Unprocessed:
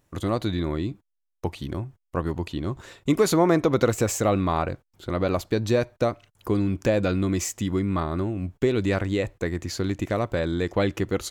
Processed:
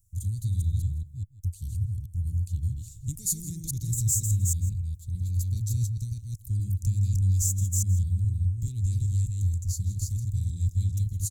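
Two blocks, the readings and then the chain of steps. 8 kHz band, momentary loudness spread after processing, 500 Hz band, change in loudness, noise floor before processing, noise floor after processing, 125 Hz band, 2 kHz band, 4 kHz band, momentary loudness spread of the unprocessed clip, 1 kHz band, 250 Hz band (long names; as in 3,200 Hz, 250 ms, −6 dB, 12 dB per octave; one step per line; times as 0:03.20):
+5.0 dB, 9 LU, below −40 dB, −3.0 dB, −77 dBFS, −47 dBFS, +4.0 dB, below −35 dB, below −10 dB, 11 LU, below −40 dB, −18.0 dB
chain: delay that plays each chunk backwards 206 ms, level −1.5 dB
Chebyshev band-stop filter 100–7,300 Hz, order 3
single-tap delay 163 ms −17 dB
level +5 dB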